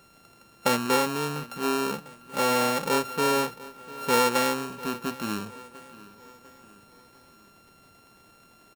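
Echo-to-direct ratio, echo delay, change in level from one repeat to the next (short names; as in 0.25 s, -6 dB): -18.0 dB, 0.698 s, -6.5 dB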